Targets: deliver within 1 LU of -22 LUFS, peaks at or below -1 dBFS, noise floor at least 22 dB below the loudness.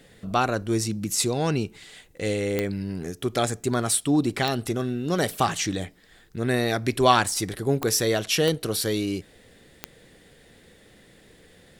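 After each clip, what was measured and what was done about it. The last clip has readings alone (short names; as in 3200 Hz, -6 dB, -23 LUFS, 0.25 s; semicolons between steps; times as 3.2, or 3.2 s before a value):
clicks 5; loudness -25.0 LUFS; peak -3.0 dBFS; loudness target -22.0 LUFS
-> de-click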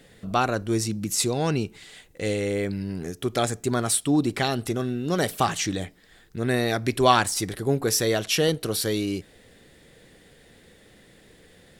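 clicks 0; loudness -25.0 LUFS; peak -3.0 dBFS; loudness target -22.0 LUFS
-> gain +3 dB; limiter -1 dBFS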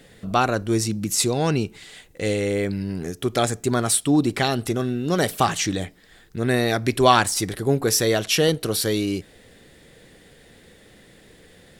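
loudness -22.0 LUFS; peak -1.0 dBFS; noise floor -52 dBFS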